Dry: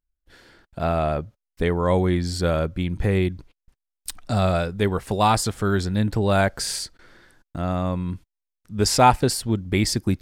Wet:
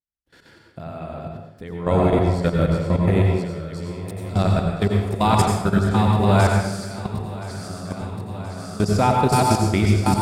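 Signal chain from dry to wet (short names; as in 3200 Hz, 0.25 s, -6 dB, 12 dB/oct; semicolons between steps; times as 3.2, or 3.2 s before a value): regenerating reverse delay 0.512 s, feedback 77%, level -4.5 dB; HPF 120 Hz 12 dB/oct; low shelf 200 Hz +10 dB; notches 60/120/180/240/300/360/420 Hz; level quantiser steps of 17 dB; reverb RT60 0.85 s, pre-delay 82 ms, DRR 1 dB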